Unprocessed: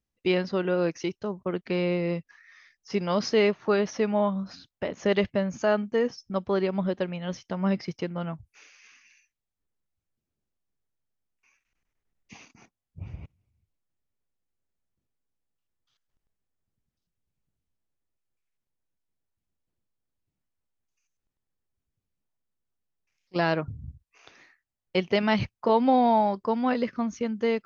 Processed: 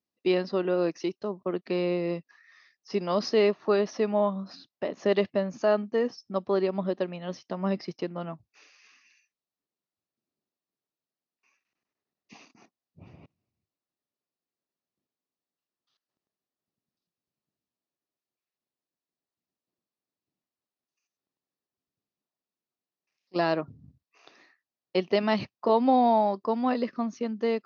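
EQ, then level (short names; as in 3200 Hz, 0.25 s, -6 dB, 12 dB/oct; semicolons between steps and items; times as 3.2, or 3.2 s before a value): speaker cabinet 260–5100 Hz, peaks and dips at 490 Hz -4 dB, 880 Hz -4 dB, 1500 Hz -8 dB, 2200 Hz -8 dB, 3200 Hz -7 dB; +2.5 dB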